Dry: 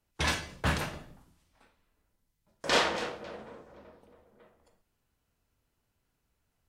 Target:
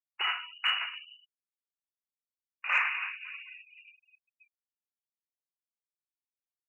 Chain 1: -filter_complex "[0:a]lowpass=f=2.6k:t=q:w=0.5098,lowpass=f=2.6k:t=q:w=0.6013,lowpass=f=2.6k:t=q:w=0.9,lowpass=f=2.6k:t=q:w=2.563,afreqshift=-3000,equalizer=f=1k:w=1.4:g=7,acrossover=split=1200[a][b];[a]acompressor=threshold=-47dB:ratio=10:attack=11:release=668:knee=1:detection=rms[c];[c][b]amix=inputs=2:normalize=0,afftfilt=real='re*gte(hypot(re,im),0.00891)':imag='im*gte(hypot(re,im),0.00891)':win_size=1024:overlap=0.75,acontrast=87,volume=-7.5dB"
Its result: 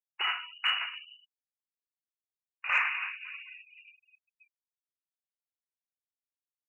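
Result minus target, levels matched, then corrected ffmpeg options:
125 Hz band +8.5 dB
-filter_complex "[0:a]lowpass=f=2.6k:t=q:w=0.5098,lowpass=f=2.6k:t=q:w=0.6013,lowpass=f=2.6k:t=q:w=0.9,lowpass=f=2.6k:t=q:w=2.563,afreqshift=-3000,highpass=140,equalizer=f=1k:w=1.4:g=7,acrossover=split=1200[a][b];[a]acompressor=threshold=-47dB:ratio=10:attack=11:release=668:knee=1:detection=rms[c];[c][b]amix=inputs=2:normalize=0,afftfilt=real='re*gte(hypot(re,im),0.00891)':imag='im*gte(hypot(re,im),0.00891)':win_size=1024:overlap=0.75,acontrast=87,volume=-7.5dB"

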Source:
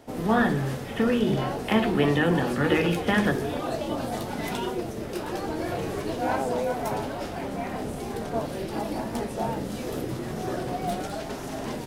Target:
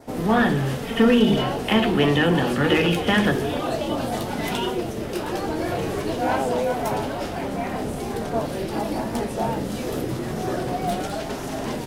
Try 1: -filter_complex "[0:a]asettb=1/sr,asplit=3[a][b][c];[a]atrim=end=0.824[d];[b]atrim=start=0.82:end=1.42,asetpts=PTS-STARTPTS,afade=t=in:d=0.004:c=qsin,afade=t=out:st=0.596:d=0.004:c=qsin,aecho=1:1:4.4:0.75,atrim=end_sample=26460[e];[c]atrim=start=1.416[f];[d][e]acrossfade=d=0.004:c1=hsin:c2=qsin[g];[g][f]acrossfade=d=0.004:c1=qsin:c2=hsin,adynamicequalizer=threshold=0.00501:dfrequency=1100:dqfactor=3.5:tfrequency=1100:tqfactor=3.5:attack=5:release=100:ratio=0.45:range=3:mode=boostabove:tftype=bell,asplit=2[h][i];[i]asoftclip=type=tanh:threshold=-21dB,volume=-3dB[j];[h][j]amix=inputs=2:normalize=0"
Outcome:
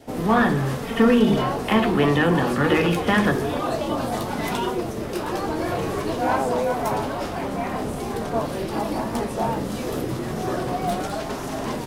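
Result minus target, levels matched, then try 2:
4000 Hz band -4.0 dB
-filter_complex "[0:a]asettb=1/sr,asplit=3[a][b][c];[a]atrim=end=0.824[d];[b]atrim=start=0.82:end=1.42,asetpts=PTS-STARTPTS,afade=t=in:d=0.004:c=qsin,afade=t=out:st=0.596:d=0.004:c=qsin,aecho=1:1:4.4:0.75,atrim=end_sample=26460[e];[c]atrim=start=1.416[f];[d][e]acrossfade=d=0.004:c1=hsin:c2=qsin[g];[g][f]acrossfade=d=0.004:c1=qsin:c2=hsin,adynamicequalizer=threshold=0.00501:dfrequency=3000:dqfactor=3.5:tfrequency=3000:tqfactor=3.5:attack=5:release=100:ratio=0.45:range=3:mode=boostabove:tftype=bell,asplit=2[h][i];[i]asoftclip=type=tanh:threshold=-21dB,volume=-3dB[j];[h][j]amix=inputs=2:normalize=0"

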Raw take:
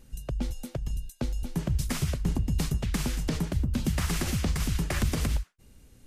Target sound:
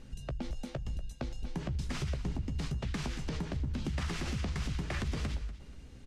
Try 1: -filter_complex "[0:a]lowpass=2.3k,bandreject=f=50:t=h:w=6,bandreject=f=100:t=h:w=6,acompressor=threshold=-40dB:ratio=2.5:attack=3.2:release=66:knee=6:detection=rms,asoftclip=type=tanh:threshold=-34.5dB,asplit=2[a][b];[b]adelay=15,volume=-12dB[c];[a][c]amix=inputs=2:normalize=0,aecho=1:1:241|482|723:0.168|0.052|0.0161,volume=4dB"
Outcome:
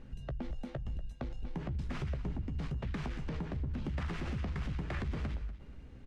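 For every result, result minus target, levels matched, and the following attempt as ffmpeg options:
soft clip: distortion +12 dB; 4000 Hz band -6.5 dB
-filter_complex "[0:a]lowpass=2.3k,bandreject=f=50:t=h:w=6,bandreject=f=100:t=h:w=6,acompressor=threshold=-40dB:ratio=2.5:attack=3.2:release=66:knee=6:detection=rms,asoftclip=type=tanh:threshold=-26.5dB,asplit=2[a][b];[b]adelay=15,volume=-12dB[c];[a][c]amix=inputs=2:normalize=0,aecho=1:1:241|482|723:0.168|0.052|0.0161,volume=4dB"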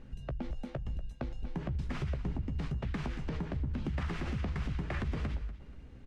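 4000 Hz band -7.0 dB
-filter_complex "[0:a]lowpass=5.1k,bandreject=f=50:t=h:w=6,bandreject=f=100:t=h:w=6,acompressor=threshold=-40dB:ratio=2.5:attack=3.2:release=66:knee=6:detection=rms,asoftclip=type=tanh:threshold=-26.5dB,asplit=2[a][b];[b]adelay=15,volume=-12dB[c];[a][c]amix=inputs=2:normalize=0,aecho=1:1:241|482|723:0.168|0.052|0.0161,volume=4dB"

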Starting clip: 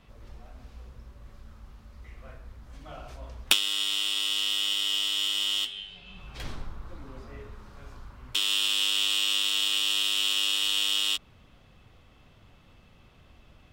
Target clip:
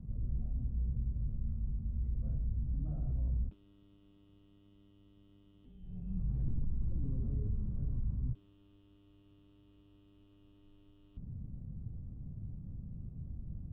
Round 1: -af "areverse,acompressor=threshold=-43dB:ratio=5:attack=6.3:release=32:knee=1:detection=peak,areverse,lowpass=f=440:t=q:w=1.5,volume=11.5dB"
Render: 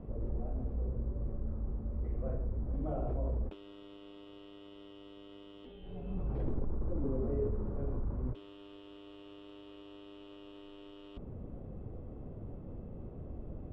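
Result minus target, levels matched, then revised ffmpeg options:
500 Hz band +19.5 dB
-af "areverse,acompressor=threshold=-43dB:ratio=5:attack=6.3:release=32:knee=1:detection=peak,areverse,lowpass=f=160:t=q:w=1.5,volume=11.5dB"

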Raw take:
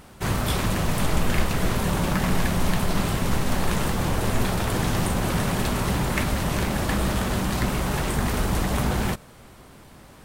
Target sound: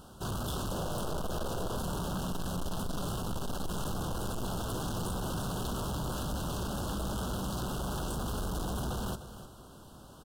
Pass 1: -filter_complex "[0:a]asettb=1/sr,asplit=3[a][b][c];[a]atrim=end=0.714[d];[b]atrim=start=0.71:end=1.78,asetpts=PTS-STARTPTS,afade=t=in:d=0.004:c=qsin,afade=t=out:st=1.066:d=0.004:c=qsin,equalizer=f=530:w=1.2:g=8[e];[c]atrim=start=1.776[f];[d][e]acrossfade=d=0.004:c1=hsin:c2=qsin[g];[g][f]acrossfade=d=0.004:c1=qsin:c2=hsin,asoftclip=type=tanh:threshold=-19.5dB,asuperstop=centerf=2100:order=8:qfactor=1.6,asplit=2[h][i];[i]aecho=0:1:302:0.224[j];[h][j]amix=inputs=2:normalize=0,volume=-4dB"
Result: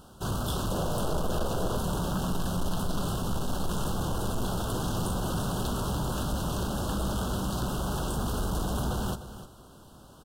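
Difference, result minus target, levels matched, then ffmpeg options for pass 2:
soft clip: distortion -6 dB
-filter_complex "[0:a]asettb=1/sr,asplit=3[a][b][c];[a]atrim=end=0.714[d];[b]atrim=start=0.71:end=1.78,asetpts=PTS-STARTPTS,afade=t=in:d=0.004:c=qsin,afade=t=out:st=1.066:d=0.004:c=qsin,equalizer=f=530:w=1.2:g=8[e];[c]atrim=start=1.776[f];[d][e]acrossfade=d=0.004:c1=hsin:c2=qsin[g];[g][f]acrossfade=d=0.004:c1=qsin:c2=hsin,asoftclip=type=tanh:threshold=-28dB,asuperstop=centerf=2100:order=8:qfactor=1.6,asplit=2[h][i];[i]aecho=0:1:302:0.224[j];[h][j]amix=inputs=2:normalize=0,volume=-4dB"

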